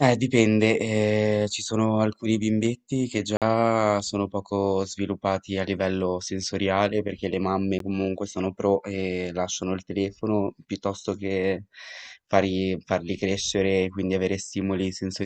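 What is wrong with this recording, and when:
3.37–3.42 s: dropout 47 ms
7.79–7.80 s: dropout 13 ms

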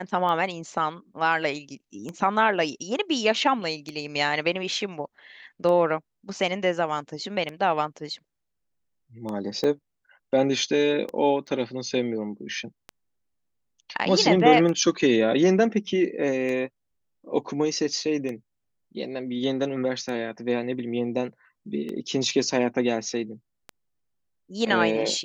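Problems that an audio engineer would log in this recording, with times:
tick 33 1/3 rpm -20 dBFS
9.64 s: dropout 2.1 ms
11.47–11.48 s: dropout 5.8 ms

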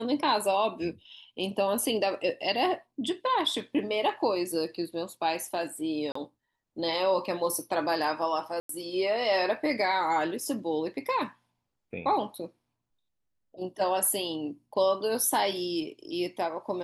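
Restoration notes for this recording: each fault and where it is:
6.12–6.15 s: dropout 34 ms
8.60–8.69 s: dropout 93 ms

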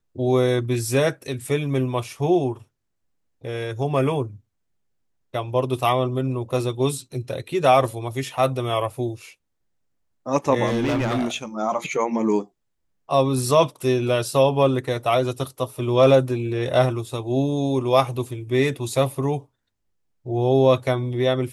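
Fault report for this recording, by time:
10.66–11.36 s: clipped -18.5 dBFS

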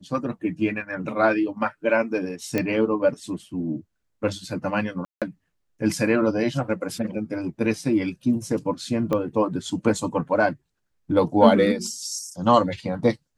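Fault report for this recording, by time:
2.58 s: pop -10 dBFS
5.05–5.22 s: dropout 167 ms
9.13 s: pop -13 dBFS

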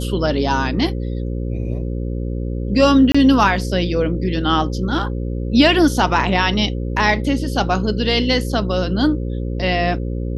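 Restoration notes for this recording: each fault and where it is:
buzz 60 Hz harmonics 9 -23 dBFS
3.12–3.15 s: dropout 25 ms

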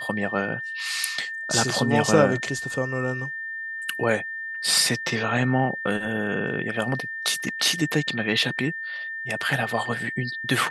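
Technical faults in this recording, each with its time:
whine 1.8 kHz -30 dBFS

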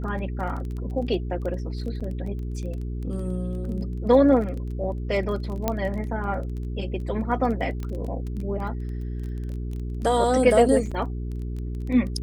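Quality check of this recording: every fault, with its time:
crackle 19 per s -32 dBFS
hum 60 Hz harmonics 7 -30 dBFS
2.00–2.01 s: dropout 6.1 ms
5.68 s: pop -9 dBFS
7.83 s: pop -21 dBFS
10.91–10.92 s: dropout 5.7 ms

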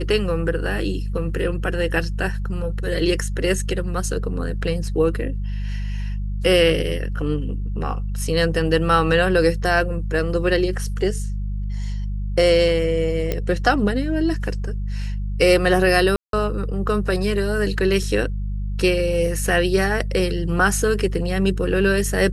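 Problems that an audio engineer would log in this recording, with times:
hum 50 Hz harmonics 4 -25 dBFS
13.32 s: pop -10 dBFS
16.16–16.33 s: dropout 172 ms

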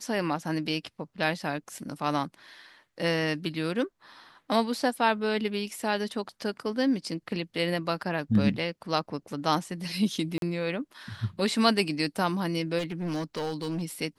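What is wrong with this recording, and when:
10.38–10.42 s: dropout 42 ms
12.78–13.83 s: clipped -27.5 dBFS

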